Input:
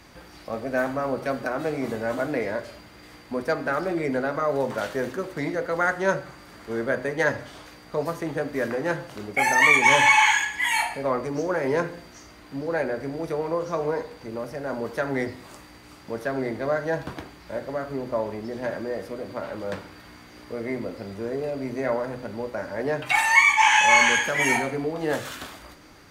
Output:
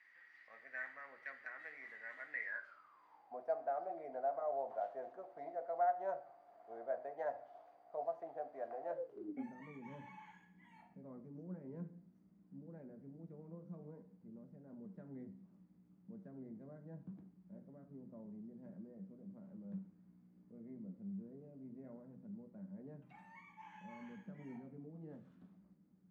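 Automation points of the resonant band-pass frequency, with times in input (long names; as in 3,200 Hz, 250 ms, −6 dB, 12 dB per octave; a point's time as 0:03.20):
resonant band-pass, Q 16
0:02.42 1,900 Hz
0:03.39 700 Hz
0:08.85 700 Hz
0:09.55 190 Hz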